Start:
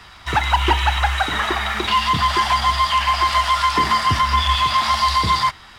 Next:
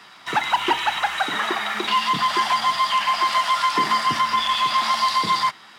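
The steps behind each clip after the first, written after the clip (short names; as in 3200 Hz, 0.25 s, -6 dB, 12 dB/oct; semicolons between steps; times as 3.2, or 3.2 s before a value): HPF 170 Hz 24 dB/oct; gain -2.5 dB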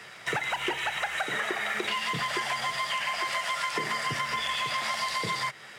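graphic EQ 125/250/500/1000/2000/4000/8000 Hz +9/-8/+10/-9/+6/-6/+5 dB; compressor, threshold -27 dBFS, peak gain reduction 10.5 dB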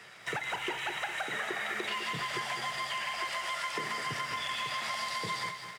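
feedback echo 0.203 s, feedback 54%, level -12 dB; lo-fi delay 0.22 s, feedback 35%, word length 9-bit, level -10.5 dB; gain -5.5 dB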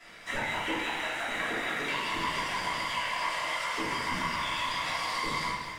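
whisperiser; shoebox room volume 190 m³, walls mixed, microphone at 2.9 m; gain -6.5 dB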